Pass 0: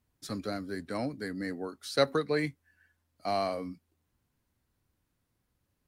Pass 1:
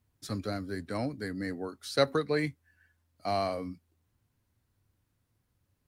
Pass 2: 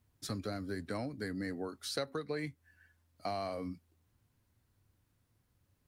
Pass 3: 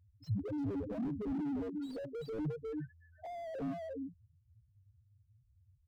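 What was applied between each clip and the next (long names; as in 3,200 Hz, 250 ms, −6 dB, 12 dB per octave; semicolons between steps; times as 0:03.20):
parametric band 100 Hz +8 dB 0.59 octaves
downward compressor 5 to 1, threshold −36 dBFS, peak gain reduction 15.5 dB; level +1 dB
spectral peaks only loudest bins 1; slap from a distant wall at 60 metres, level −7 dB; slew-rate limiting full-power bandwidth 1.1 Hz; level +13.5 dB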